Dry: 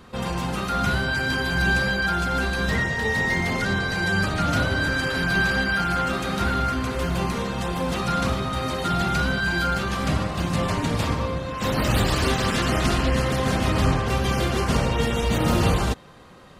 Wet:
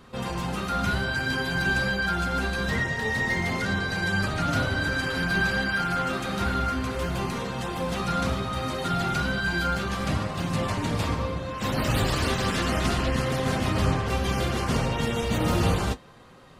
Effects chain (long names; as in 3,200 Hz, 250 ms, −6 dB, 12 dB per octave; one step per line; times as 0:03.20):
flanger 0.67 Hz, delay 7.1 ms, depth 4.4 ms, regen −55%
level +1 dB